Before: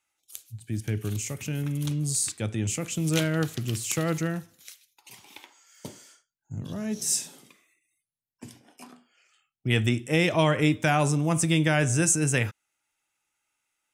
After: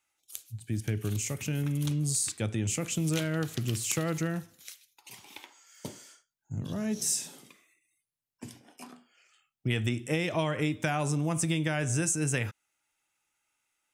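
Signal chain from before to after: compressor, threshold -25 dBFS, peak gain reduction 8.5 dB

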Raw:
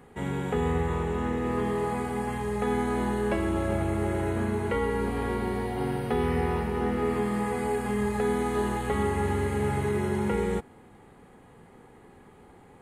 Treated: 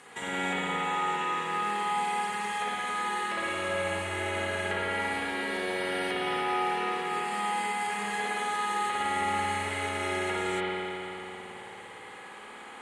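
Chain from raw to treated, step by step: weighting filter ITU-R 468; compressor, threshold -39 dBFS, peak gain reduction 13 dB; spring tank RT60 3.3 s, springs 54 ms, chirp 50 ms, DRR -8 dB; gain +2.5 dB

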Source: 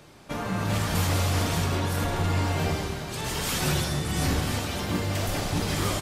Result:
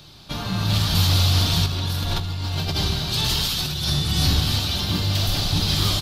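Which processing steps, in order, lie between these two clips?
graphic EQ 250/500/1000/2000/4000/8000 Hz -6/-11/-4/-11/+12/-10 dB; 1.66–3.9 negative-ratio compressor -32 dBFS, ratio -1; gain +8 dB

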